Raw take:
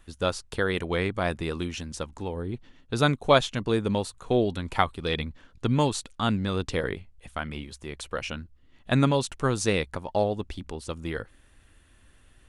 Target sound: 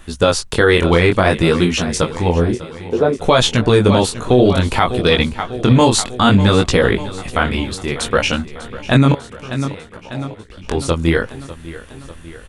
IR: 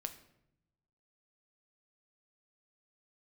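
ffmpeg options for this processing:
-filter_complex "[0:a]asettb=1/sr,asplit=3[link_01][link_02][link_03];[link_01]atrim=end=2.524[link_04];[link_02]atrim=start=2.52:end=3.18,asetpts=PTS-STARTPTS,afade=type=in:duration=0.004:curve=qsin,afade=type=out:start_time=0.656:duration=0.004:curve=qsin,bandpass=frequency=440:width_type=q:width=2.7:csg=0[link_05];[link_03]atrim=start=3.176[link_06];[link_04][link_05]acrossfade=duration=0.004:curve1=hsin:curve2=qsin[link_07];[link_07][link_06]acrossfade=duration=0.004:curve1=qsin:curve2=hsin,asettb=1/sr,asplit=3[link_08][link_09][link_10];[link_08]atrim=end=9.124[link_11];[link_09]atrim=start=9.12:end=10.64,asetpts=PTS-STARTPTS,afade=type=in:duration=0.004:curve=qsin,afade=type=out:start_time=1.516:duration=0.004:curve=qsin,acompressor=threshold=-52dB:ratio=5[link_12];[link_10]atrim=start=10.636[link_13];[link_11][link_12]acrossfade=duration=0.004:curve1=hsin:curve2=qsin[link_14];[link_14][link_13]acrossfade=duration=0.004:curve1=qsin:curve2=hsin,flanger=delay=16.5:depth=7.7:speed=0.59,aecho=1:1:597|1194|1791|2388|2985|3582:0.141|0.0848|0.0509|0.0305|0.0183|0.011,alimiter=level_in=20.5dB:limit=-1dB:release=50:level=0:latency=1,volume=-1dB"

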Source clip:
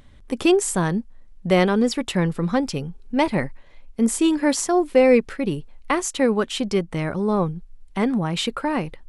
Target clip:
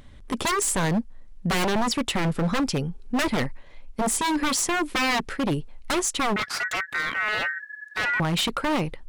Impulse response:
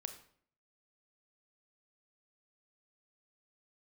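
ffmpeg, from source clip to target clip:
-filter_complex "[0:a]aeval=exprs='0.1*(abs(mod(val(0)/0.1+3,4)-2)-1)':channel_layout=same,asettb=1/sr,asplit=3[link_01][link_02][link_03];[link_01]atrim=end=6.364[link_04];[link_02]atrim=start=6.36:end=8.2,asetpts=PTS-STARTPTS,afade=type=in:duration=0.004:curve=qsin,afade=type=out:start_time=1.836:duration=0.004:curve=qsin,aeval=exprs='val(0)*sin(2*PI*1700*n/s)':channel_layout=same[link_05];[link_03]atrim=start=8.196[link_06];[link_04][link_05]acrossfade=duration=0.004:curve1=hsin:curve2=qsin[link_07];[link_07][link_06]acrossfade=duration=0.004:curve1=qsin:curve2=hsin,volume=2dB"

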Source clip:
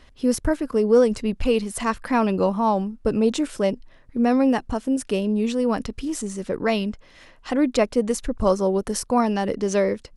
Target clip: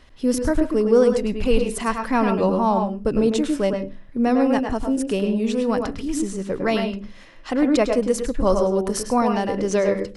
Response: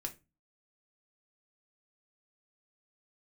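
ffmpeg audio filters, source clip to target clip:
-filter_complex "[0:a]asplit=2[link_01][link_02];[link_02]lowpass=frequency=3100:poles=1[link_03];[1:a]atrim=start_sample=2205,adelay=103[link_04];[link_03][link_04]afir=irnorm=-1:irlink=0,volume=-2dB[link_05];[link_01][link_05]amix=inputs=2:normalize=0"

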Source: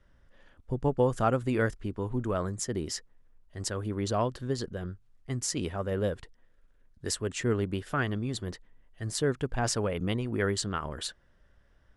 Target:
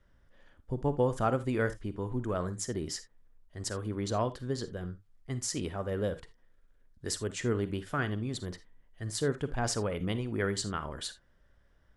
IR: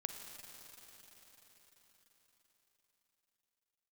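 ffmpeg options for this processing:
-filter_complex "[0:a]bandreject=frequency=2700:width=21[link_01];[1:a]atrim=start_sample=2205,afade=type=out:start_time=0.13:duration=0.01,atrim=end_sample=6174[link_02];[link_01][link_02]afir=irnorm=-1:irlink=0"

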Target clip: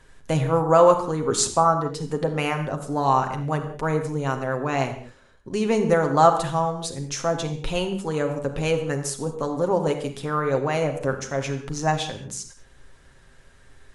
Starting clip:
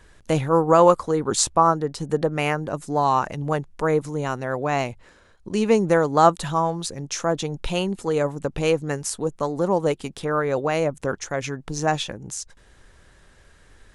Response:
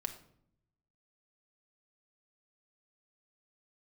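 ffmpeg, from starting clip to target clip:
-filter_complex "[1:a]atrim=start_sample=2205,atrim=end_sample=6174,asetrate=27783,aresample=44100[link_01];[0:a][link_01]afir=irnorm=-1:irlink=0,volume=-3dB"

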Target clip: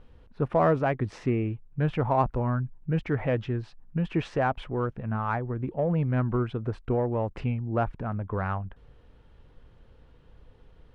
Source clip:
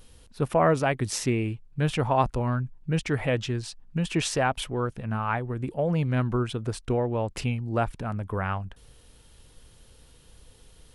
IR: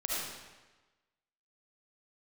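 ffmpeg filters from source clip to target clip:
-filter_complex "[0:a]lowpass=1700,asplit=2[link_01][link_02];[link_02]asoftclip=type=tanh:threshold=-23dB,volume=-11dB[link_03];[link_01][link_03]amix=inputs=2:normalize=0,volume=-2dB"

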